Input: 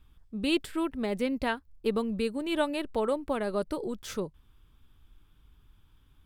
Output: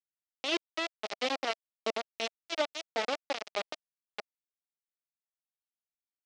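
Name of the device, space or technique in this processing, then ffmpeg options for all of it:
hand-held game console: -filter_complex "[0:a]asettb=1/sr,asplit=3[a][b][c];[a]atrim=end=1.034[d];[b]atrim=start=1.03:end=2,asetpts=PTS-STARTPTS,afade=t=in:d=0.004:c=qsin,afade=t=out:st=0.966:d=0.004:c=qsin,aecho=1:1:7.4:0.49,atrim=end_sample=42777[e];[c]atrim=start=1.996[f];[d][e]acrossfade=d=0.004:c1=hsin:c2=qsin[g];[g][f]acrossfade=d=0.004:c1=qsin:c2=hsin,acrusher=bits=3:mix=0:aa=0.000001,highpass=420,equalizer=f=660:t=q:w=4:g=5,equalizer=f=1k:t=q:w=4:g=-7,equalizer=f=1.6k:t=q:w=4:g=-6,lowpass=f=5.4k:w=0.5412,lowpass=f=5.4k:w=1.3066,volume=-3dB"

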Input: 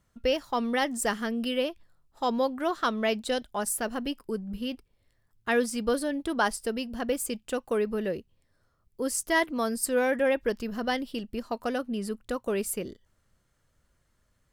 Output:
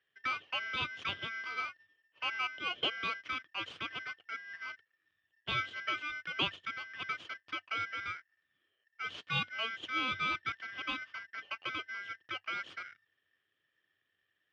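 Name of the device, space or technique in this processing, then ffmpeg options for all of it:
ring modulator pedal into a guitar cabinet: -af "aeval=exprs='val(0)*sgn(sin(2*PI*1800*n/s))':c=same,highpass=95,equalizer=f=97:t=q:w=4:g=8,equalizer=f=200:t=q:w=4:g=-4,equalizer=f=320:t=q:w=4:g=4,equalizer=f=860:t=q:w=4:g=-7,equalizer=f=2k:t=q:w=4:g=-5,equalizer=f=3.1k:t=q:w=4:g=9,lowpass=f=3.4k:w=0.5412,lowpass=f=3.4k:w=1.3066,volume=-8dB"

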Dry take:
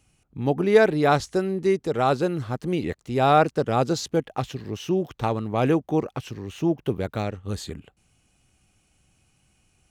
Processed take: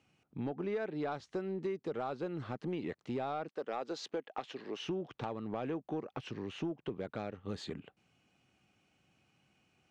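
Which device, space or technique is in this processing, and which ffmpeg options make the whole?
AM radio: -filter_complex "[0:a]asettb=1/sr,asplit=3[a][b][c];[a]atrim=end=3.484[d];[b]atrim=start=3.48:end=4.81,asetpts=PTS-STARTPTS,afade=t=in:d=0.004:c=qsin,afade=t=out:st=1.326:d=0.004:c=qsin,highpass=360[e];[c]atrim=start=4.806[f];[d][e]acrossfade=d=0.004:c1=hsin:c2=qsin[g];[g][f]acrossfade=d=0.004:c1=qsin:c2=hsin,highpass=160,lowpass=3.7k,acompressor=threshold=-30dB:ratio=8,asoftclip=type=tanh:threshold=-23.5dB,volume=-3dB"

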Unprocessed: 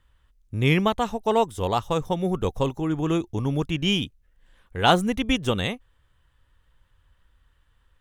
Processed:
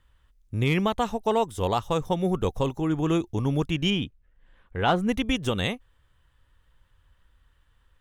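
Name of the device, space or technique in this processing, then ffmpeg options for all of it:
clipper into limiter: -filter_complex "[0:a]asoftclip=type=hard:threshold=-9dB,alimiter=limit=-13dB:level=0:latency=1:release=122,asettb=1/sr,asplit=3[a][b][c];[a]atrim=end=3.904[d];[b]atrim=start=3.9:end=5.09,asetpts=PTS-STARTPTS,afade=t=in:d=0.004:c=qsin,afade=t=out:st=1.186:d=0.004:c=qsin,bass=f=250:g=0,treble=f=4k:g=-14[e];[c]atrim=start=5.086[f];[d][e]acrossfade=d=0.004:c1=hsin:c2=qsin[g];[g][f]acrossfade=d=0.004:c1=qsin:c2=hsin"

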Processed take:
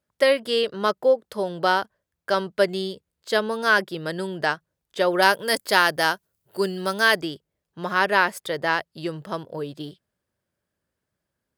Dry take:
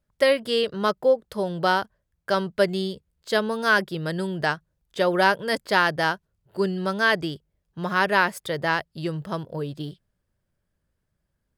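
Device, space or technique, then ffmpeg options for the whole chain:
low shelf boost with a cut just above: -filter_complex "[0:a]asettb=1/sr,asplit=3[a][b][c];[a]atrim=end=5.224[d];[b]atrim=start=5.22:end=7.22,asetpts=PTS-STARTPTS,afade=t=in:d=0.004:c=qsin,afade=t=out:st=1.996:d=0.004:c=qsin,aemphasis=mode=production:type=50kf[e];[c]atrim=start=7.216[f];[d][e]acrossfade=d=0.004:c1=hsin:c2=qsin[g];[g][f]acrossfade=d=0.004:c1=qsin:c2=hsin,highpass=160,lowshelf=f=84:g=7.5,equalizer=f=160:t=o:w=1.1:g=-5.5,volume=1dB"

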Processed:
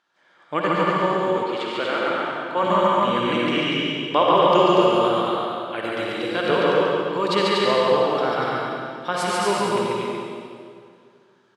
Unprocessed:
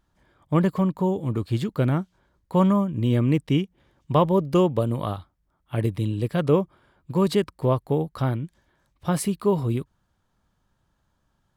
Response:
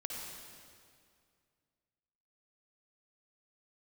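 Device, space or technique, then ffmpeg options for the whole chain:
station announcement: -filter_complex "[0:a]highpass=450,lowpass=3.7k,equalizer=f=1.5k:t=o:w=0.38:g=4,highshelf=f=2k:g=11,aecho=1:1:142.9|239.1:0.708|0.708[a];[1:a]atrim=start_sample=2205[b];[a][b]afir=irnorm=-1:irlink=0,aecho=1:1:137:0.447,asettb=1/sr,asplit=3[c][d][e];[c]atrim=end=1.434[f];[d]atrim=start=1.43:end=2.63,asetpts=PTS-STARTPTS,afade=t=in:d=0.004:c=qsin,afade=t=out:st=1.196:d=0.004:c=qsin,bass=f=250:g=-11,treble=f=4k:g=-5[g];[e]atrim=start=2.626[h];[f][g]acrossfade=d=0.004:c1=hsin:c2=qsin[i];[i][h]acrossfade=d=0.004:c1=qsin:c2=hsin,volume=4dB"

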